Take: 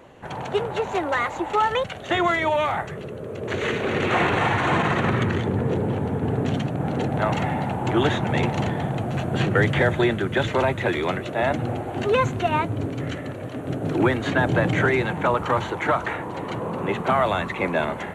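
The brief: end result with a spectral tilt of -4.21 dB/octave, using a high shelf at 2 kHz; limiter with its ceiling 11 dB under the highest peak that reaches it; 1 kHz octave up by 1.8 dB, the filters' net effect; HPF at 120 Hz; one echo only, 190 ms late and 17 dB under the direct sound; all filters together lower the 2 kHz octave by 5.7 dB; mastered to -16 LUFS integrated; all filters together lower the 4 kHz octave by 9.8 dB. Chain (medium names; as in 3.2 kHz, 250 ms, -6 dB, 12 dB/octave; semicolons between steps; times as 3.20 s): high-pass 120 Hz; peaking EQ 1 kHz +5 dB; treble shelf 2 kHz -5.5 dB; peaking EQ 2 kHz -5 dB; peaking EQ 4 kHz -6 dB; peak limiter -19 dBFS; delay 190 ms -17 dB; trim +12 dB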